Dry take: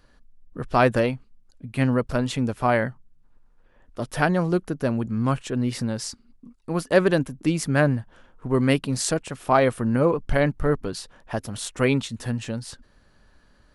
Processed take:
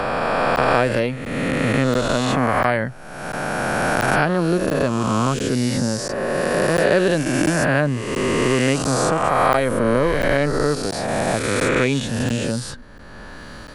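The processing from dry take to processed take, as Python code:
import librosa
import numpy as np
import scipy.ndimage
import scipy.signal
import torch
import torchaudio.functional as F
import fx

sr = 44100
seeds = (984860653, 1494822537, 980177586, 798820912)

y = fx.spec_swells(x, sr, rise_s=2.32)
y = fx.buffer_crackle(y, sr, first_s=0.56, period_s=0.69, block=512, kind='zero')
y = fx.band_squash(y, sr, depth_pct=70)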